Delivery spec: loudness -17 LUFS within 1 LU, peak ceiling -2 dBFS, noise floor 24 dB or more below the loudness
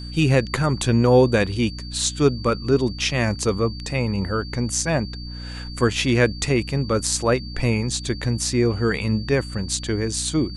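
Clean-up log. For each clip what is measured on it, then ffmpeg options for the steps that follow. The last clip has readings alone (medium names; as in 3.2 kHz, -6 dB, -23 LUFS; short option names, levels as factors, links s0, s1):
hum 60 Hz; highest harmonic 300 Hz; hum level -32 dBFS; steady tone 4.6 kHz; tone level -38 dBFS; loudness -21.5 LUFS; peak level -3.5 dBFS; loudness target -17.0 LUFS
-> -af "bandreject=f=60:t=h:w=6,bandreject=f=120:t=h:w=6,bandreject=f=180:t=h:w=6,bandreject=f=240:t=h:w=6,bandreject=f=300:t=h:w=6"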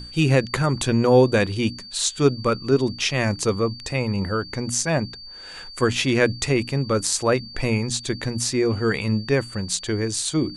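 hum not found; steady tone 4.6 kHz; tone level -38 dBFS
-> -af "bandreject=f=4600:w=30"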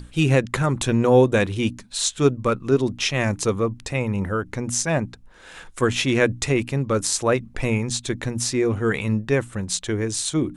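steady tone not found; loudness -22.0 LUFS; peak level -4.0 dBFS; loudness target -17.0 LUFS
-> -af "volume=1.78,alimiter=limit=0.794:level=0:latency=1"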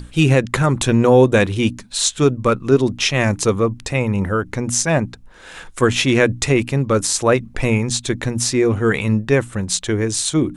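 loudness -17.5 LUFS; peak level -2.0 dBFS; noise floor -42 dBFS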